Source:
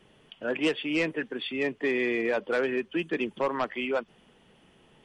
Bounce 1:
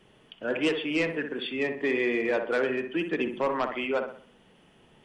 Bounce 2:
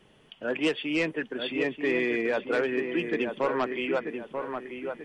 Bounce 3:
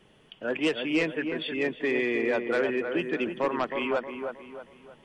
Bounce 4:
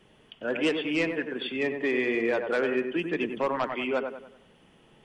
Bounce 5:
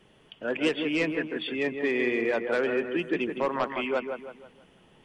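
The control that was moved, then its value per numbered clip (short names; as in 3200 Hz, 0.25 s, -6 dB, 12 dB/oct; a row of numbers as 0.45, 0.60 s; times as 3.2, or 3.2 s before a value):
dark delay, time: 62, 937, 315, 95, 161 ms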